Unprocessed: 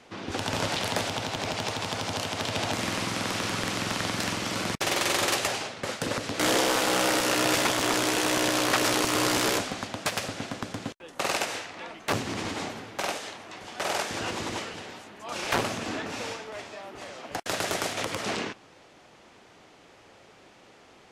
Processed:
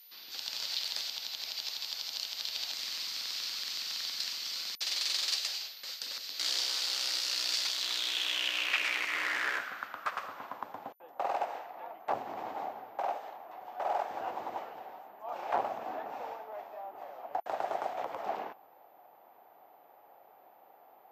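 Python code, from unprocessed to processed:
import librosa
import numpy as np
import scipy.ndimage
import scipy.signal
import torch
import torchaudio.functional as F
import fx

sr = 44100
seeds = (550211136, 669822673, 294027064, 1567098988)

y = x + 10.0 ** (-32.0 / 20.0) * np.sin(2.0 * np.pi * 14000.0 * np.arange(len(x)) / sr)
y = fx.filter_sweep_bandpass(y, sr, from_hz=4500.0, to_hz=770.0, start_s=7.68, end_s=10.98, q=4.0)
y = y * librosa.db_to_amplitude(3.5)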